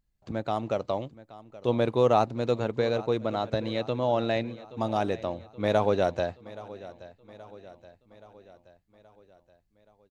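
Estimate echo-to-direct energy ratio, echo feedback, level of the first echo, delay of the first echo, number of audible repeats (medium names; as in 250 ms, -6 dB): -16.5 dB, 55%, -18.0 dB, 825 ms, 4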